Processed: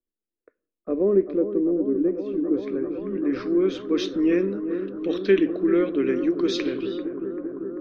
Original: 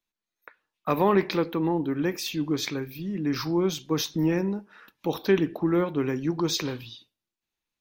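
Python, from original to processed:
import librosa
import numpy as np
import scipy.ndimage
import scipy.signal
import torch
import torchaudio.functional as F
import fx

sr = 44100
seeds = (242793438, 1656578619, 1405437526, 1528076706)

y = fx.fixed_phaser(x, sr, hz=360.0, stages=4)
y = fx.echo_bbd(y, sr, ms=391, stages=4096, feedback_pct=83, wet_db=-10)
y = fx.filter_sweep_lowpass(y, sr, from_hz=530.0, to_hz=2900.0, start_s=2.03, end_s=4.06, q=0.87)
y = y * 10.0 ** (4.0 / 20.0)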